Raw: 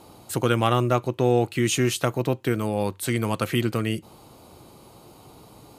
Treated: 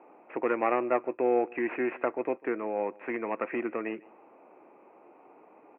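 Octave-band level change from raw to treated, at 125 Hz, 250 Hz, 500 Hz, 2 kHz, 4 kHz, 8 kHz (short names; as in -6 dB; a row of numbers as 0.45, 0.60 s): under -30 dB, -8.0 dB, -4.0 dB, -5.0 dB, under -25 dB, under -40 dB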